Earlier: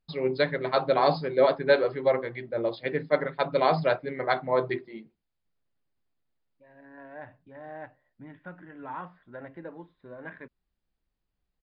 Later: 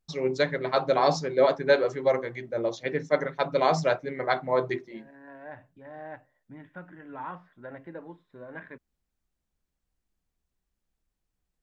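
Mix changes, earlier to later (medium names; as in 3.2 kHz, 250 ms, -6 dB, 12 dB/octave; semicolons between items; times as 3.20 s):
second voice: entry -1.70 s; master: remove brick-wall FIR low-pass 5.1 kHz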